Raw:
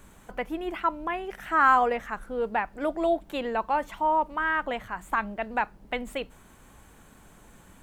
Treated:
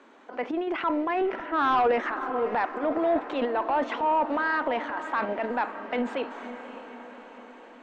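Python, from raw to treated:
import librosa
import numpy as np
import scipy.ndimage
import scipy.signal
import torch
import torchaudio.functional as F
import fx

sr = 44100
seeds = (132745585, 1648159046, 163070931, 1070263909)

p1 = scipy.signal.sosfilt(scipy.signal.ellip(4, 1.0, 40, 250.0, 'highpass', fs=sr, output='sos'), x)
p2 = fx.level_steps(p1, sr, step_db=15)
p3 = p1 + F.gain(torch.from_numpy(p2), -1.0).numpy()
p4 = fx.transient(p3, sr, attack_db=-3, sustain_db=11)
p5 = fx.tilt_eq(p4, sr, slope=-3.5, at=(1.21, 1.75))
p6 = p5 + fx.echo_diffused(p5, sr, ms=568, feedback_pct=58, wet_db=-13, dry=0)
p7 = 10.0 ** (-16.0 / 20.0) * np.tanh(p6 / 10.0 ** (-16.0 / 20.0))
p8 = scipy.signal.sosfilt(scipy.signal.butter(4, 5400.0, 'lowpass', fs=sr, output='sos'), p7)
y = fx.high_shelf(p8, sr, hz=3200.0, db=-9.0)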